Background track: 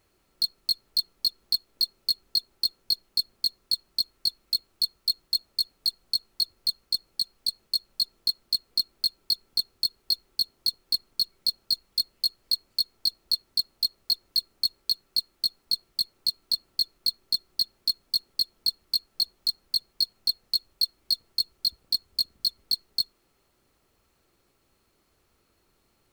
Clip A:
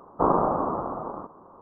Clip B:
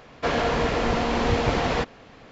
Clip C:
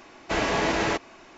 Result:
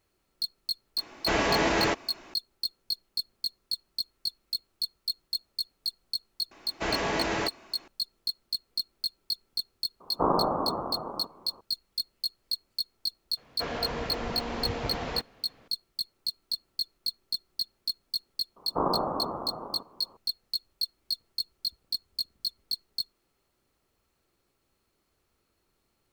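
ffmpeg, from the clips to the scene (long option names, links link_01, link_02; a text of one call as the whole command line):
ffmpeg -i bed.wav -i cue0.wav -i cue1.wav -i cue2.wav -filter_complex "[3:a]asplit=2[link_01][link_02];[1:a]asplit=2[link_03][link_04];[0:a]volume=-6dB[link_05];[link_01]atrim=end=1.37,asetpts=PTS-STARTPTS,volume=-0.5dB,afade=type=in:duration=0.004:curve=hsin,afade=type=out:start_time=1.366:duration=0.004:curve=hsin,adelay=970[link_06];[link_02]atrim=end=1.37,asetpts=PTS-STARTPTS,volume=-4.5dB,afade=type=in:duration=0.004:curve=hsin,afade=type=out:start_time=1.366:duration=0.004:curve=hsin,adelay=6510[link_07];[link_03]atrim=end=1.61,asetpts=PTS-STARTPTS,volume=-3.5dB,afade=type=in:duration=0.004:curve=hsin,afade=type=out:start_time=1.606:duration=0.004:curve=hsin,adelay=10000[link_08];[2:a]atrim=end=2.31,asetpts=PTS-STARTPTS,volume=-10.5dB,afade=type=in:duration=0.004:curve=hsin,afade=type=out:start_time=2.306:duration=0.004:curve=hsin,adelay=13370[link_09];[link_04]atrim=end=1.61,asetpts=PTS-STARTPTS,volume=-6dB,afade=type=in:duration=0.004:curve=hsin,afade=type=out:start_time=1.606:duration=0.004:curve=hsin,adelay=18560[link_10];[link_05][link_06][link_07][link_08][link_09][link_10]amix=inputs=6:normalize=0" out.wav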